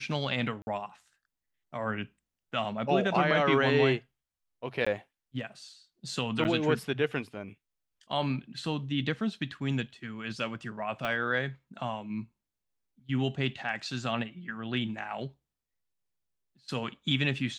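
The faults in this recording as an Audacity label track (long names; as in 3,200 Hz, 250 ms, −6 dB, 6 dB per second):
0.620000	0.670000	drop-out 51 ms
4.850000	4.870000	drop-out 15 ms
6.440000	6.450000	drop-out 9.1 ms
11.050000	11.050000	click −19 dBFS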